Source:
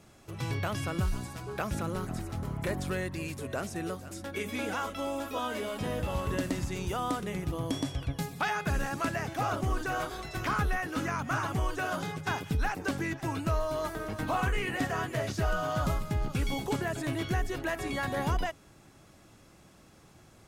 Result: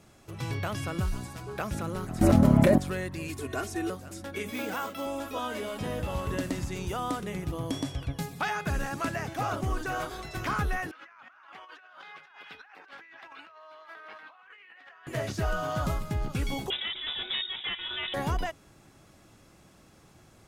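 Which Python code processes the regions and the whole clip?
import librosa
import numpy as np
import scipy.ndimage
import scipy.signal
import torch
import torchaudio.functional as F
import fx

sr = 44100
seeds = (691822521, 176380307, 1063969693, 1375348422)

y = fx.chain(x, sr, fx.small_body(hz=(240.0, 580.0), ring_ms=40, db=15),
    fx.env_flatten(amount_pct=100), at=(2.21, 2.78))
y = fx.chain(y, sr, fx.peak_eq(hz=660.0, db=-4.0, octaves=0.32),
    fx.comb(ms=2.8, depth=0.96), at=(3.29, 3.9))
y = fx.chain(y, sr, fx.highpass(hz=110.0, slope=24),
    fx.resample_bad(factor=3, down='none', up='hold'), at=(4.51, 5.06))
y = fx.chain(y, sr, fx.highpass(hz=1400.0, slope=12),
    fx.air_absorb(metres=350.0),
    fx.over_compress(threshold_db=-51.0, ratio=-1.0), at=(10.91, 15.07))
y = fx.chain(y, sr, fx.self_delay(depth_ms=0.16),
    fx.low_shelf(hz=170.0, db=-7.5),
    fx.freq_invert(carrier_hz=3700), at=(16.7, 18.14))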